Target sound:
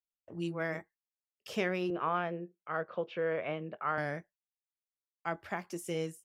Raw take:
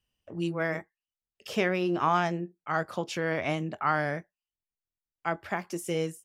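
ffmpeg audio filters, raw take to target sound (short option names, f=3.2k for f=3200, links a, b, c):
-filter_complex "[0:a]agate=range=-24dB:threshold=-54dB:ratio=16:detection=peak,asettb=1/sr,asplit=3[a][b][c];[a]atrim=end=1.904[d];[b]atrim=start=1.9:end=3.98,asetpts=PTS-STARTPTS,afade=t=in:d=0.004:c=qsin,afade=t=out:st=2.076:d=0.004:c=qsin,highpass=180,equalizer=f=270:t=q:w=4:g=-9,equalizer=f=500:t=q:w=4:g=7,equalizer=f=830:t=q:w=4:g=-6,equalizer=f=2k:t=q:w=4:g=-4,lowpass=f=2.9k:w=0.5412,lowpass=f=2.9k:w=1.3066[e];[c]atrim=start=3.976[f];[d][e]acrossfade=d=0.004:c1=hsin:c2=qsin[g];[g][f]acrossfade=d=0.004:c1=qsin:c2=hsin,volume=-5.5dB"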